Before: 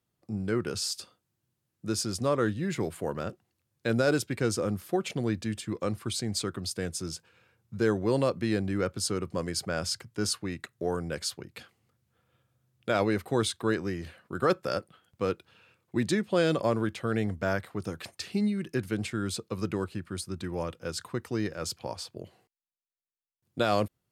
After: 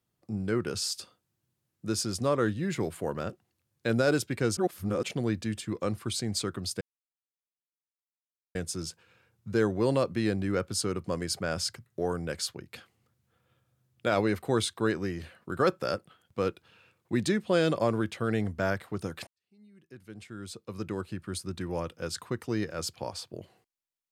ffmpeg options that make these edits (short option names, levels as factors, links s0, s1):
-filter_complex "[0:a]asplit=6[s0][s1][s2][s3][s4][s5];[s0]atrim=end=4.572[s6];[s1]atrim=start=4.568:end=5.032,asetpts=PTS-STARTPTS,areverse[s7];[s2]atrim=start=5.028:end=6.81,asetpts=PTS-STARTPTS,afade=t=out:st=1.778:d=0.004:c=hsin,apad=pad_dur=1.74[s8];[s3]atrim=start=6.81:end=10.122,asetpts=PTS-STARTPTS,afade=t=in:d=0.004:c=hsin[s9];[s4]atrim=start=10.688:end=18.1,asetpts=PTS-STARTPTS,afade=t=out:st=7.408:d=0.004:c=hsin[s10];[s5]atrim=start=18.1,asetpts=PTS-STARTPTS,afade=t=in:d=2.01:c=qua[s11];[s6][s7]acrossfade=d=0.004:c1=hsin:c2=hsin[s12];[s8][s9]concat=n=2:v=0:a=1[s13];[s12][s13]acrossfade=d=0.004:c1=hsin:c2=hsin[s14];[s10][s11]concat=n=2:v=0:a=1[s15];[s14][s15]acrossfade=d=0.004:c1=hsin:c2=hsin"